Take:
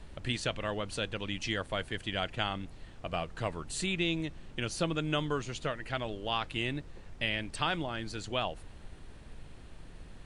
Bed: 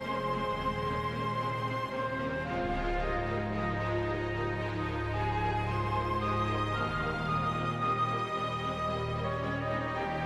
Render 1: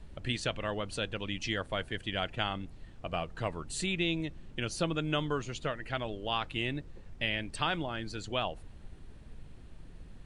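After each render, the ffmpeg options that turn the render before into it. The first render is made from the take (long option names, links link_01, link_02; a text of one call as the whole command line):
ffmpeg -i in.wav -af "afftdn=noise_reduction=6:noise_floor=-50" out.wav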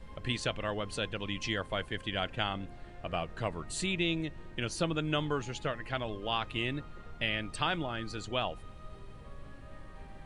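ffmpeg -i in.wav -i bed.wav -filter_complex "[1:a]volume=-21.5dB[link_01];[0:a][link_01]amix=inputs=2:normalize=0" out.wav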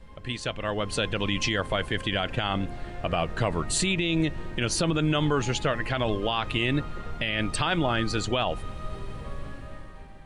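ffmpeg -i in.wav -af "dynaudnorm=framelen=160:gausssize=11:maxgain=12.5dB,alimiter=limit=-15dB:level=0:latency=1:release=50" out.wav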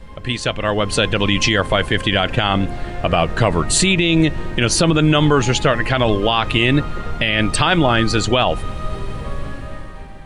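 ffmpeg -i in.wav -af "volume=10.5dB" out.wav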